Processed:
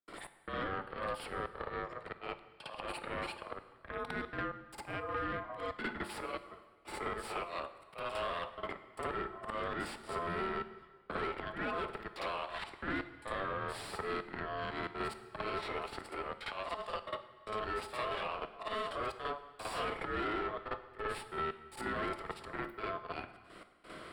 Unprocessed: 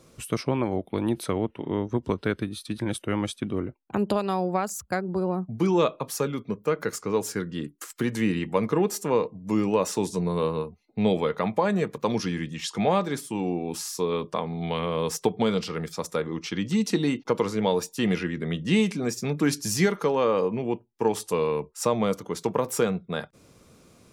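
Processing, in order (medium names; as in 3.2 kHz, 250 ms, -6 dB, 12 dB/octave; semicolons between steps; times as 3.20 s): high-pass 740 Hz 6 dB/octave; slow attack 162 ms; valve stage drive 36 dB, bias 0.75; trance gate ".x..xxxxxxx.xxxx" 113 bpm -60 dB; ring modulator 860 Hz; boxcar filter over 7 samples; reverse echo 55 ms -7.5 dB; plate-style reverb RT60 0.95 s, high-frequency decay 0.9×, DRR 11 dB; three bands compressed up and down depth 70%; trim +6.5 dB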